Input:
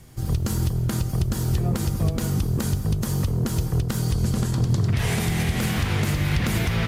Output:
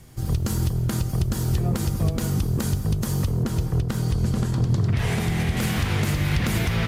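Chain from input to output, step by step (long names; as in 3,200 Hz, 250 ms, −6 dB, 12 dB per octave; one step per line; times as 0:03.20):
0:03.43–0:05.57: high-shelf EQ 4,400 Hz −7 dB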